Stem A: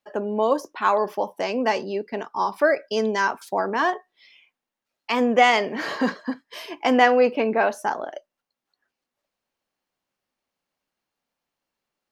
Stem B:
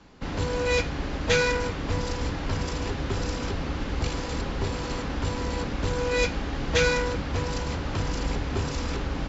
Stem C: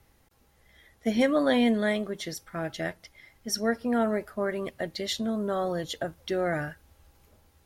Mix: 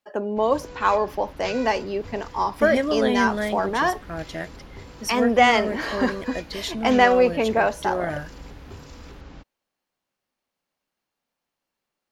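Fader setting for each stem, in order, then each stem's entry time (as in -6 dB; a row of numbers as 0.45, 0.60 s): 0.0, -13.0, 0.0 dB; 0.00, 0.15, 1.55 s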